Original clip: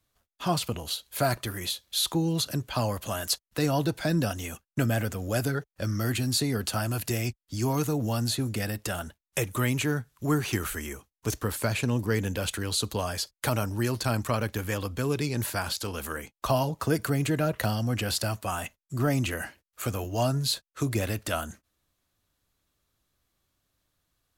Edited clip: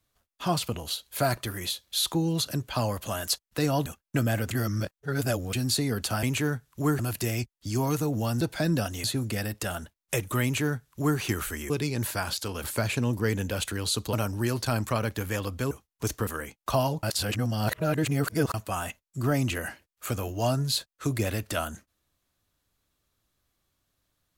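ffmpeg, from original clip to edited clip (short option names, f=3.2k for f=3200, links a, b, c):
-filter_complex "[0:a]asplit=15[a][b][c][d][e][f][g][h][i][j][k][l][m][n][o];[a]atrim=end=3.862[p];[b]atrim=start=4.488:end=5.142[q];[c]atrim=start=5.138:end=6.162,asetpts=PTS-STARTPTS,areverse[r];[d]atrim=start=6.158:end=6.862[s];[e]atrim=start=9.668:end=10.432[t];[f]atrim=start=6.858:end=8.282[u];[g]atrim=start=3.858:end=4.492[v];[h]atrim=start=8.278:end=10.942[w];[i]atrim=start=15.088:end=16.032[x];[j]atrim=start=11.498:end=12.992[y];[k]atrim=start=13.508:end=15.092[z];[l]atrim=start=10.938:end=11.502[aa];[m]atrim=start=16.028:end=16.792[ab];[n]atrim=start=16.788:end=18.302,asetpts=PTS-STARTPTS,areverse[ac];[o]atrim=start=18.298[ad];[p][q]acrossfade=d=0.004:c1=hsin:c2=hsin[ae];[ae][r]acrossfade=d=0.004:c1=hsin:c2=hsin[af];[af][s]acrossfade=d=0.004:c1=hsin:c2=hsin[ag];[ag][t]acrossfade=d=0.004:c1=hsin:c2=hsin[ah];[ah][u]acrossfade=d=0.004:c1=hsin:c2=hsin[ai];[ai][v]acrossfade=d=0.004:c1=hsin:c2=hsin[aj];[aj][w]acrossfade=d=0.004:c1=hsin:c2=hsin[ak];[ak][x]acrossfade=d=0.004:c1=hsin:c2=hsin[al];[al][y]acrossfade=d=0.004:c1=hsin:c2=hsin[am];[am][z]acrossfade=d=0.004:c1=hsin:c2=hsin[an];[an][aa]acrossfade=d=0.004:c1=hsin:c2=hsin[ao];[ao][ab]acrossfade=d=0.004:c1=hsin:c2=hsin[ap];[ap][ac]acrossfade=d=0.004:c1=hsin:c2=hsin[aq];[aq][ad]acrossfade=d=0.004:c1=hsin:c2=hsin"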